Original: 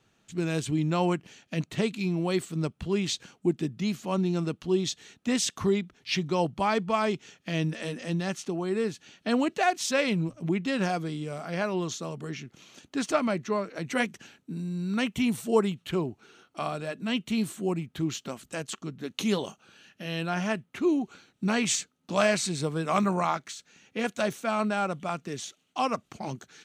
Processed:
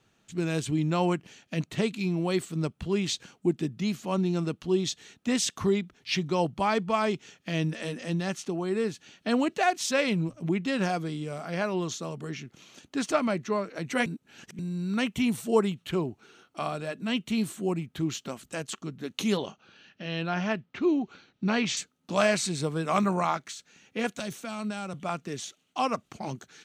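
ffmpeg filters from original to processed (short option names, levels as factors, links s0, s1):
-filter_complex "[0:a]asettb=1/sr,asplit=3[s0][s1][s2];[s0]atrim=end=19.374[s3];[s1]atrim=start=19.37:end=21.77,asetpts=PTS-STARTPTS,afade=t=in:d=0.004:c=qsin,afade=t=out:st=2.396:d=0.004:c=qsin,lowpass=f=5400:w=0.5412,lowpass=f=5400:w=1.3066[s4];[s2]atrim=start=21.766[s5];[s3][s4]acrossfade=d=0.004:c1=hsin:c2=qsin[s6];[s6][s5]acrossfade=d=0.004:c1=qsin:c2=hsin,asettb=1/sr,asplit=3[s7][s8][s9];[s7]atrim=end=24.194[s10];[s8]atrim=start=24.19:end=24.94,asetpts=PTS-STARTPTS,afade=t=in:d=0.004:c=qsin,afade=t=out:st=0.746:d=0.004:c=qsin,acrossover=split=200|3000[s11][s12][s13];[s12]acompressor=threshold=0.0178:ratio=6:attack=3.2:release=140:knee=2.83:detection=peak[s14];[s11][s14][s13]amix=inputs=3:normalize=0[s15];[s9]atrim=start=24.936[s16];[s10][s15]acrossfade=d=0.004:c1=hsin:c2=qsin[s17];[s17][s16]acrossfade=d=0.004:c1=qsin:c2=hsin,asplit=3[s18][s19][s20];[s18]atrim=end=14.062[s21];[s19]atrim=start=14.058:end=14.592,asetpts=PTS-STARTPTS,areverse[s22];[s20]atrim=start=14.588[s23];[s21][s22]acrossfade=d=0.004:c1=hsin:c2=hsin[s24];[s24][s23]acrossfade=d=0.004:c1=hsin:c2=hsin"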